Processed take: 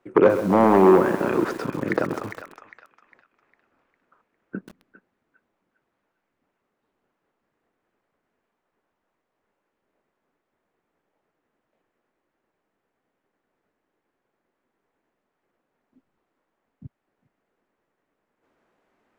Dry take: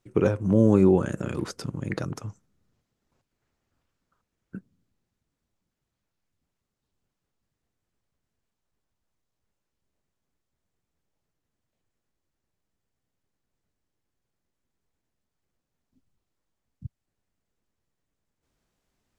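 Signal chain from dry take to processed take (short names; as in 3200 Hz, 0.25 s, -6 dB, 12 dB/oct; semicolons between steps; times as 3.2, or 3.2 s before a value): self-modulated delay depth 0.12 ms; in parallel at -2 dB: compressor 8:1, threshold -29 dBFS, peak gain reduction 15.5 dB; on the sum: wavefolder -12 dBFS; three-band isolator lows -21 dB, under 240 Hz, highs -20 dB, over 2300 Hz; narrowing echo 0.404 s, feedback 41%, band-pass 2500 Hz, level -8.5 dB; lo-fi delay 0.131 s, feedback 35%, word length 7-bit, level -11 dB; gain +8 dB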